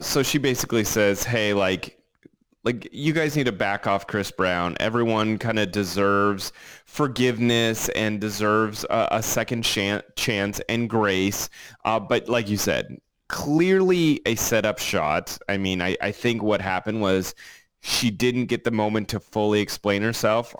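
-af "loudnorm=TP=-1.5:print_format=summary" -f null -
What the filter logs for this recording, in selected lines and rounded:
Input Integrated:    -23.1 LUFS
Input True Peak:      -9.6 dBTP
Input LRA:             1.8 LU
Input Threshold:     -33.4 LUFS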